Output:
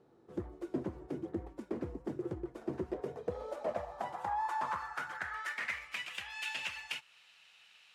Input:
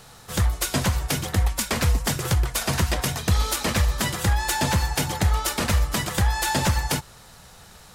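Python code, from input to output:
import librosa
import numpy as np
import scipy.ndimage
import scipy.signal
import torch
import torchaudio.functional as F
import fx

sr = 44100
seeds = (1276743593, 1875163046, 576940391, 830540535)

y = fx.dynamic_eq(x, sr, hz=3900.0, q=1.1, threshold_db=-41.0, ratio=4.0, max_db=-4)
y = fx.filter_sweep_bandpass(y, sr, from_hz=340.0, to_hz=2700.0, start_s=2.7, end_s=6.14, q=5.7)
y = F.gain(torch.from_numpy(y), 1.0).numpy()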